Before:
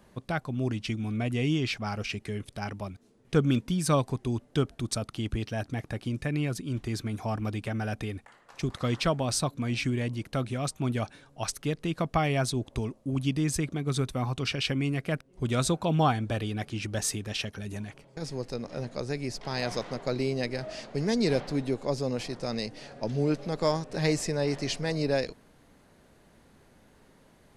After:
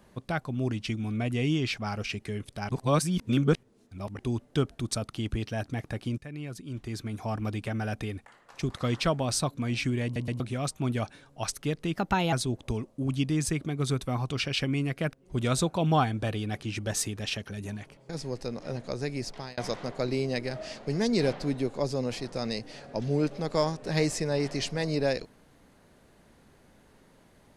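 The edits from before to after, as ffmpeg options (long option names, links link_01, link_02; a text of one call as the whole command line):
ffmpeg -i in.wav -filter_complex "[0:a]asplit=10[link_01][link_02][link_03][link_04][link_05][link_06][link_07][link_08][link_09][link_10];[link_01]atrim=end=2.692[link_11];[link_02]atrim=start=2.688:end=4.192,asetpts=PTS-STARTPTS,areverse[link_12];[link_03]atrim=start=4.188:end=6.18,asetpts=PTS-STARTPTS,afade=type=out:start_time=1.988:duration=0.004:curve=hsin:silence=0.211349[link_13];[link_04]atrim=start=6.18:end=10.162,asetpts=PTS-STARTPTS,afade=type=in:duration=1.3:silence=0.211349[link_14];[link_05]atrim=start=10.038:end=10.162[link_15];[link_06]atrim=start=10.038:end=10.162[link_16];[link_07]atrim=start=10.398:end=11.954[link_17];[link_08]atrim=start=11.95:end=12.4,asetpts=PTS-STARTPTS,asetrate=52920,aresample=44100[link_18];[link_09]atrim=start=12.396:end=19.65,asetpts=PTS-STARTPTS,afade=type=out:start_time=6.984:duration=0.27[link_19];[link_10]atrim=start=19.65,asetpts=PTS-STARTPTS,afade=type=in:duration=0.004:curve=hsin[link_20];[link_11][link_12]acrossfade=duration=0.004:curve1=hsin:curve2=hsin[link_21];[link_13][link_14]concat=n=2:v=0:a=1[link_22];[link_21][link_22]acrossfade=duration=0.004:curve1=hsin:curve2=hsin[link_23];[link_23][link_15]acrossfade=duration=0.004:curve1=hsin:curve2=hsin[link_24];[link_24][link_16]acrossfade=duration=0.004:curve1=hsin:curve2=hsin[link_25];[link_25][link_17]acrossfade=duration=0.004:curve1=hsin:curve2=hsin[link_26];[link_26][link_18]acrossfade=duration=0.004:curve1=hsin:curve2=hsin[link_27];[link_19][link_20]concat=n=2:v=0:a=1[link_28];[link_27][link_28]acrossfade=duration=0.004:curve1=hsin:curve2=hsin" out.wav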